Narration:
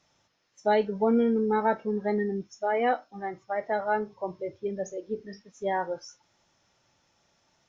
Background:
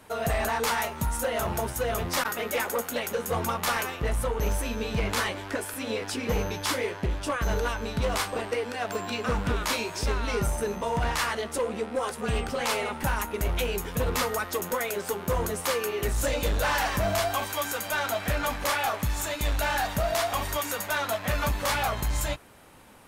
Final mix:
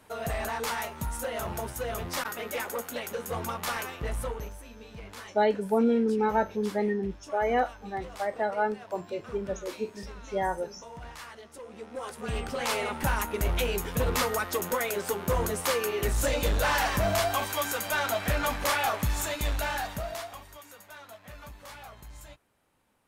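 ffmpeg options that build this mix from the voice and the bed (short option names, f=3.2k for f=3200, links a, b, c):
-filter_complex "[0:a]adelay=4700,volume=-0.5dB[a];[1:a]volume=11.5dB,afade=t=out:st=4.3:d=0.2:silence=0.266073,afade=t=in:st=11.63:d=1.37:silence=0.149624,afade=t=out:st=19.17:d=1.27:silence=0.112202[b];[a][b]amix=inputs=2:normalize=0"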